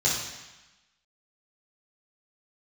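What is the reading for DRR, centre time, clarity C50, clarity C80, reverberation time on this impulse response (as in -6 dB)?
-7.0 dB, 59 ms, 1.5 dB, 4.5 dB, 1.1 s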